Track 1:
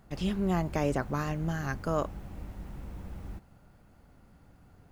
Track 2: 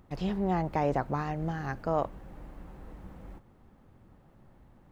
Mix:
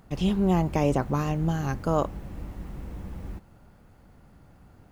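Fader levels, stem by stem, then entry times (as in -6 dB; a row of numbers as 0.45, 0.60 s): +2.5, -1.5 dB; 0.00, 0.00 s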